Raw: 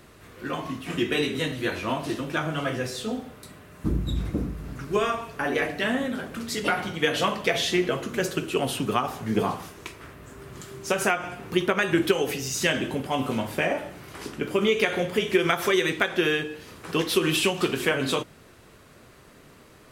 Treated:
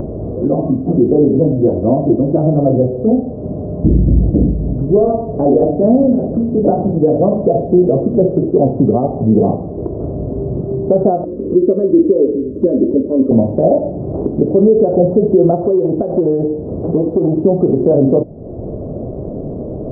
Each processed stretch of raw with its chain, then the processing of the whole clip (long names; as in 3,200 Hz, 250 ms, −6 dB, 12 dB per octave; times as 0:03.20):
0:11.24–0:13.31: phaser with its sweep stopped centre 340 Hz, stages 4 + notch comb filter 710 Hz
0:15.60–0:17.37: downward compressor 4 to 1, threshold −24 dBFS + saturating transformer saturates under 1,200 Hz
whole clip: elliptic low-pass filter 650 Hz, stop band 70 dB; upward compression, threshold −30 dBFS; boost into a limiter +19.5 dB; level −1 dB